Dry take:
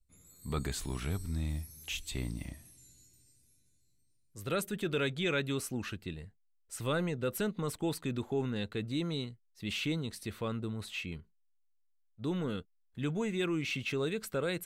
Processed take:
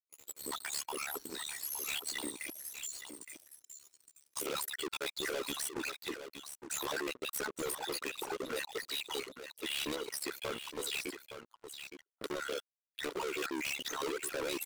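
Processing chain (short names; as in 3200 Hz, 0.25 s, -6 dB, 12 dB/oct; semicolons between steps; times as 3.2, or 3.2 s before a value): random spectral dropouts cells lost 50%; recorder AGC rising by 7.5 dB/s; reverb removal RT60 1.4 s; steep high-pass 290 Hz 48 dB/oct; high shelf 5700 Hz +2.5 dB; comb 2.1 ms, depth 47%; sample leveller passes 5; in parallel at -2.5 dB: level quantiser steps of 14 dB; on the sum: hard clip -29.5 dBFS, distortion -8 dB; AM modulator 71 Hz, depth 70%; echo 0.866 s -9.5 dB; gain -3 dB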